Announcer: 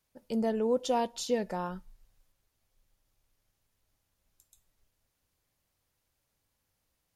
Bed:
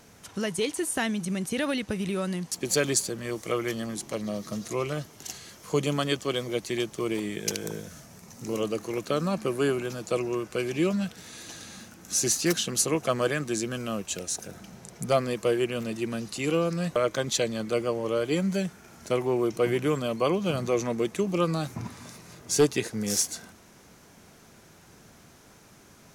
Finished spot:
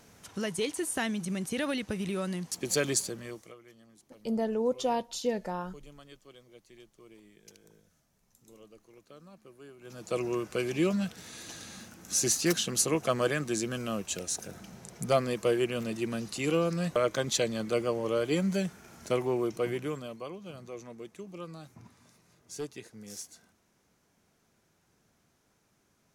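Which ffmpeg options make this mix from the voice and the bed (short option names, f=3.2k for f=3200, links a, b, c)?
-filter_complex "[0:a]adelay=3950,volume=-0.5dB[a];[1:a]volume=20dB,afade=t=out:st=3.03:d=0.52:silence=0.0794328,afade=t=in:st=9.79:d=0.47:silence=0.0668344,afade=t=out:st=19.08:d=1.21:silence=0.177828[b];[a][b]amix=inputs=2:normalize=0"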